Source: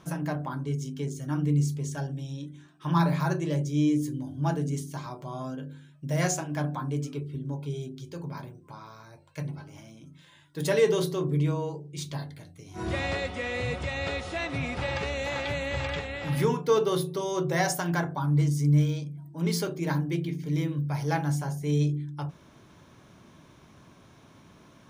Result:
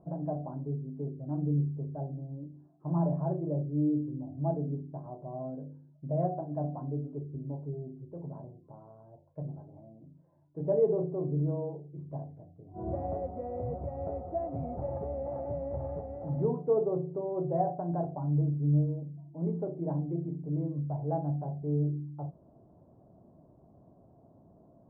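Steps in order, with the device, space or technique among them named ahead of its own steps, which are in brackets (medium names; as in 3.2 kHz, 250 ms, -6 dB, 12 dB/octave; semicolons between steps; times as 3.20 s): under water (low-pass 710 Hz 24 dB/octave; peaking EQ 690 Hz +10 dB 0.4 oct); trim -4.5 dB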